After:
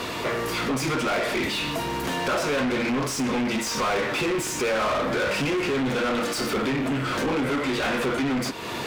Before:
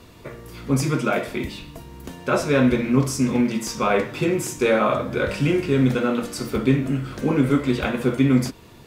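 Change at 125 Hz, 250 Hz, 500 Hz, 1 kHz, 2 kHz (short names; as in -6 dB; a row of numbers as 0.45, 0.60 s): -9.5, -5.5, -3.0, +1.0, +2.0 dB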